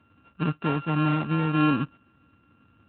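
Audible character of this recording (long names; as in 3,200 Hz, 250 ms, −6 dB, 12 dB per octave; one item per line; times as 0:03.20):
a buzz of ramps at a fixed pitch in blocks of 32 samples
Speex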